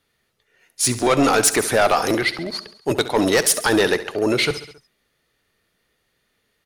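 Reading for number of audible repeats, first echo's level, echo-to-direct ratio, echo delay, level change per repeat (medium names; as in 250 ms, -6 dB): 4, -14.5 dB, -12.5 dB, 68 ms, -4.5 dB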